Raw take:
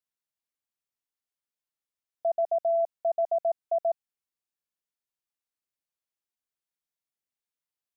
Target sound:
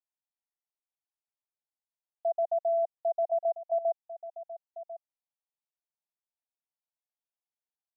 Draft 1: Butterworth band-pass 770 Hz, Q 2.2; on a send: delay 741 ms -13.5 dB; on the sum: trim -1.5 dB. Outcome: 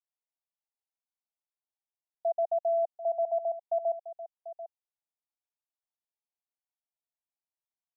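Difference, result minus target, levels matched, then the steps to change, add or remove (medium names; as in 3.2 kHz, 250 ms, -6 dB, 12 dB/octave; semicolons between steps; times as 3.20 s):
echo 305 ms early
change: delay 1046 ms -13.5 dB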